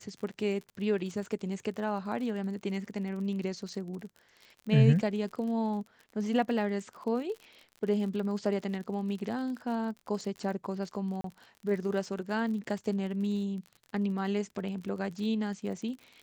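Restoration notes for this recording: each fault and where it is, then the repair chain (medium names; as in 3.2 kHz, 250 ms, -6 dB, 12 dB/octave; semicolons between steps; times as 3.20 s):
crackle 44 per s -39 dBFS
11.21–11.24 s: dropout 33 ms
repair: de-click; interpolate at 11.21 s, 33 ms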